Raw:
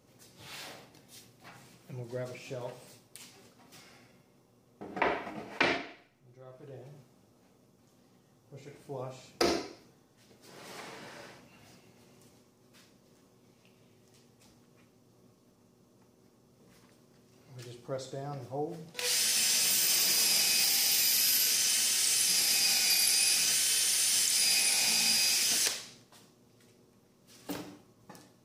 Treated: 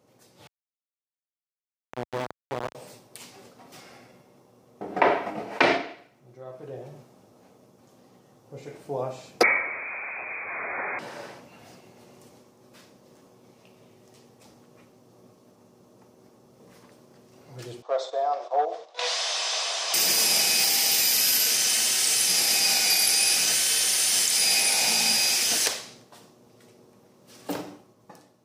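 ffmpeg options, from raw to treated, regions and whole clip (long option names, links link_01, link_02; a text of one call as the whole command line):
ffmpeg -i in.wav -filter_complex "[0:a]asettb=1/sr,asplit=3[link_01][link_02][link_03];[link_01]atrim=end=0.474[link_04];[link_02]atrim=start=0.47:end=2.75,asetpts=PTS-STARTPTS,afade=type=in:duration=0.004:curve=qsin,afade=type=out:start_time=2.276:duration=0.004:curve=qsin,lowpass=frequency=3200:width=0.5412,lowpass=frequency=3200:width=1.3066,acrusher=bits=3:dc=4:mix=0:aa=0.000001,aemphasis=mode=reproduction:type=50kf[link_05];[link_03]atrim=start=2.746[link_06];[link_04][link_05]acrossfade=duration=0.004:curve1=hsin:curve2=qsin[link_07];[link_07][link_06]acrossfade=duration=0.004:curve1=qsin:curve2=hsin,asettb=1/sr,asplit=3[link_08][link_09][link_10];[link_08]atrim=end=9.434[link_11];[link_09]atrim=start=9.43:end=10.99,asetpts=PTS-STARTPTS,afade=type=in:duration=0.004:curve=qsin,afade=type=out:start_time=1.556:duration=0.004:curve=qsin,aeval=exprs='val(0)+0.5*0.0188*sgn(val(0))':channel_layout=same,lowpass=frequency=2200:width_type=q:width=0.5098,lowpass=frequency=2200:width_type=q:width=0.6013,lowpass=frequency=2200:width_type=q:width=0.9,lowpass=frequency=2200:width_type=q:width=2.563,afreqshift=-2600[link_12];[link_10]atrim=start=10.986[link_13];[link_11][link_12]acrossfade=duration=0.004:curve1=hsin:curve2=qsin[link_14];[link_14][link_13]acrossfade=duration=0.004:curve1=qsin:curve2=hsin,asettb=1/sr,asplit=3[link_15][link_16][link_17];[link_15]atrim=end=17.824[link_18];[link_16]atrim=start=17.82:end=19.94,asetpts=PTS-STARTPTS,afade=type=in:duration=0.004:curve=qsin,afade=type=out:start_time=2.116:duration=0.004:curve=qsin,agate=range=-7dB:threshold=-49dB:ratio=16:release=100:detection=peak,asoftclip=type=hard:threshold=-31dB,highpass=frequency=490:width=0.5412,highpass=frequency=490:width=1.3066,equalizer=frequency=680:width_type=q:width=4:gain=9,equalizer=frequency=1100:width_type=q:width=4:gain=7,equalizer=frequency=3600:width_type=q:width=4:gain=7,lowpass=frequency=6600:width=0.5412,lowpass=frequency=6600:width=1.3066[link_19];[link_17]atrim=start=19.936[link_20];[link_18][link_19]acrossfade=duration=0.004:curve1=hsin:curve2=qsin[link_21];[link_21][link_20]acrossfade=duration=0.004:curve1=qsin:curve2=hsin,dynaudnorm=framelen=190:gausssize=9:maxgain=7.5dB,highpass=80,equalizer=frequency=660:width=0.69:gain=6.5,volume=-2.5dB" out.wav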